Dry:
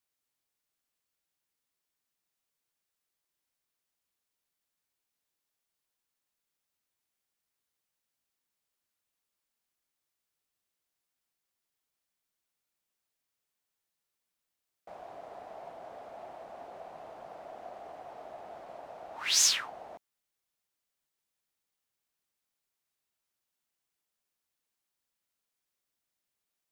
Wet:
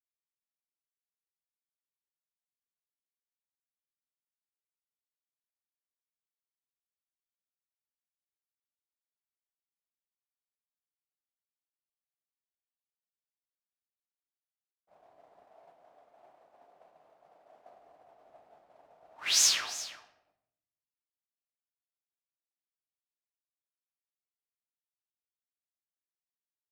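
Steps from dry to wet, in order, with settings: expander -35 dBFS; 15.43–17.73 low shelf 170 Hz -7.5 dB; echo 0.35 s -15.5 dB; shoebox room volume 220 m³, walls mixed, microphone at 0.4 m

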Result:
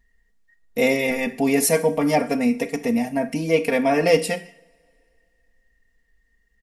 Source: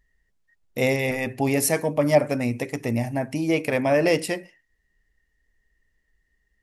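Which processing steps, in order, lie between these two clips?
comb 4.3 ms, depth 90%; two-slope reverb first 0.5 s, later 2.6 s, from -26 dB, DRR 11 dB

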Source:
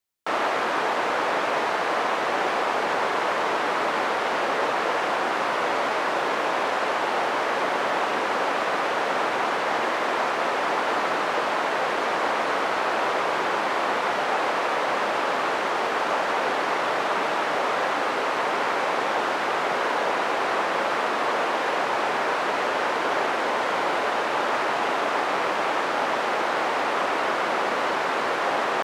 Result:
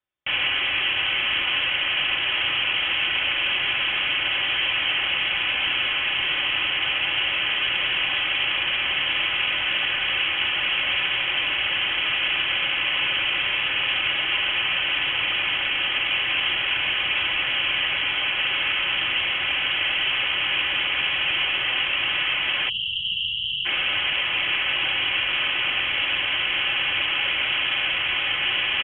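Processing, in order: comb 4.3 ms, depth 44%; inverted band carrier 3600 Hz; spectral delete 22.69–23.66, 200–2700 Hz

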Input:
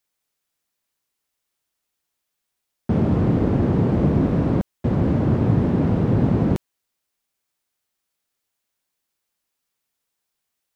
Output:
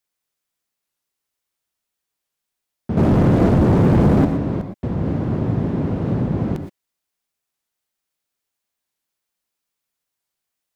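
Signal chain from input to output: 2.97–4.25 sample leveller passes 3; non-linear reverb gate 0.14 s rising, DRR 7 dB; record warp 45 rpm, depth 160 cents; gain -3 dB

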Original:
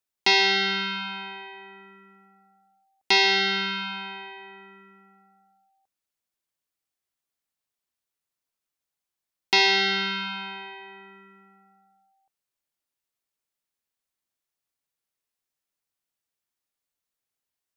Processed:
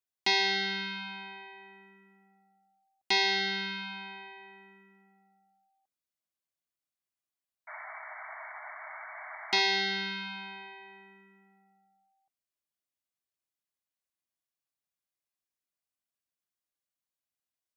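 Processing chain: notch comb 450 Hz; painted sound noise, 7.67–9.6, 600–2300 Hz -38 dBFS; gain -6 dB

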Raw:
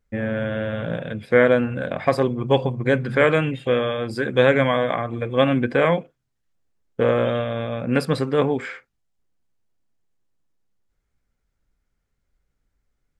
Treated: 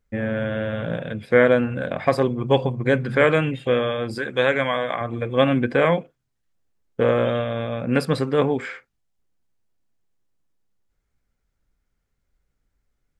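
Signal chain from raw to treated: 4.18–5.01 low shelf 470 Hz -9 dB

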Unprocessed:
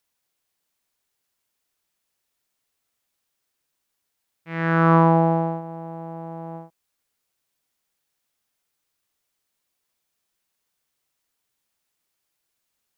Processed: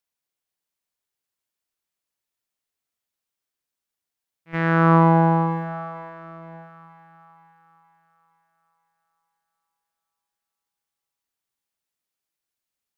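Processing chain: 5.72–6.59 high shelf 3100 Hz -6.5 dB; gate -31 dBFS, range -14 dB; in parallel at 0 dB: compressor, threshold -29 dBFS, peak gain reduction 17 dB; on the sum: split-band echo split 940 Hz, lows 0.296 s, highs 0.471 s, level -11 dB; gain -1 dB

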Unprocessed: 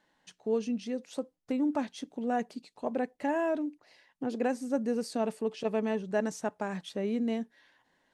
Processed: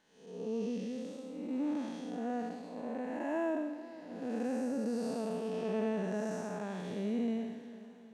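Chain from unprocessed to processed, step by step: time blur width 0.335 s; swung echo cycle 0.758 s, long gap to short 1.5:1, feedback 35%, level -16.5 dB

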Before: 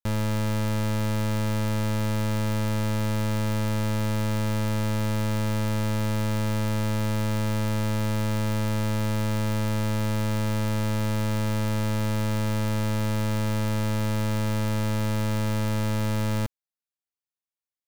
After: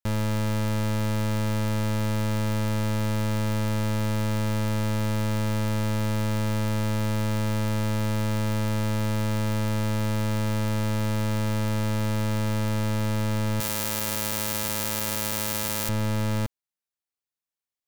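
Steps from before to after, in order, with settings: 13.6–15.89 RIAA curve recording

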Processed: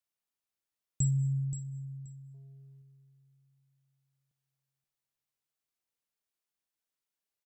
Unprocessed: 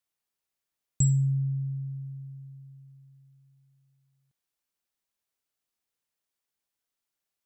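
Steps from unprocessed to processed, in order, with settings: feedback echo 0.527 s, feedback 17%, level -10.5 dB; 2.34–2.82 sample leveller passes 1; digital reverb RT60 1.7 s, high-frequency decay 0.65×, pre-delay 30 ms, DRR 12 dB; gain -5.5 dB

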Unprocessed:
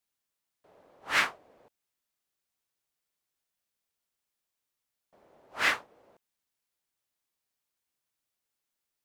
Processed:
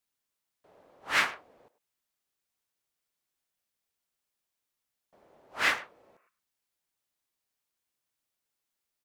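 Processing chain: spectral repair 5.95–6.26, 1000–2900 Hz before; speakerphone echo 0.1 s, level -15 dB

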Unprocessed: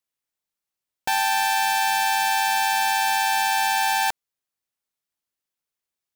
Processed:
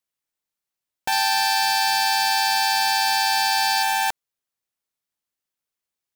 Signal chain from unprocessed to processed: 1.12–3.83 bell 4700 Hz +11.5 dB 0.33 oct

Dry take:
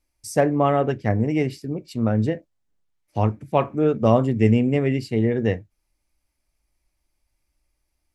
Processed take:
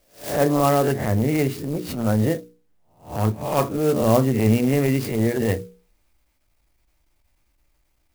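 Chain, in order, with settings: spectral swells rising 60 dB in 0.35 s; notches 60/120/180/240/300/360/420/480 Hz; transient shaper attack -12 dB, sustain +1 dB; in parallel at +2 dB: compressor, threshold -32 dBFS, peak gain reduction 17 dB; on the sum: clock jitter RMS 0.043 ms

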